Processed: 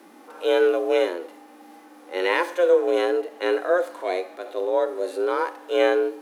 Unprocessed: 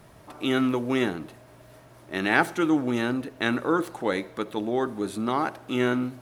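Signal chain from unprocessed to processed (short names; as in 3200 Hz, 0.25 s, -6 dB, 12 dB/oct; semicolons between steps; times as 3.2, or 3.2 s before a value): frequency shift +180 Hz; harmonic-percussive split percussive -15 dB; gain +5.5 dB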